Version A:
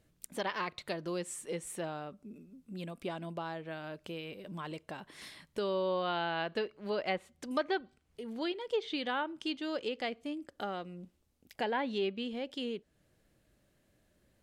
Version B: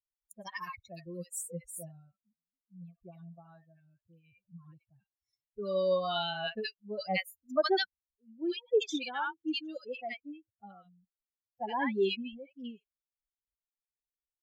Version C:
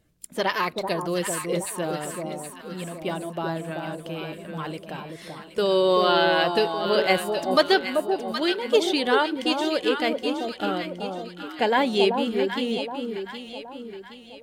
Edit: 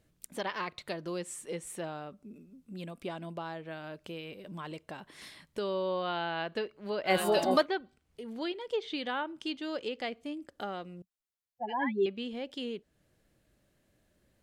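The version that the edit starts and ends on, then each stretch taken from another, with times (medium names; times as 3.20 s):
A
7.15–7.55 s: from C, crossfade 0.24 s
11.02–12.06 s: from B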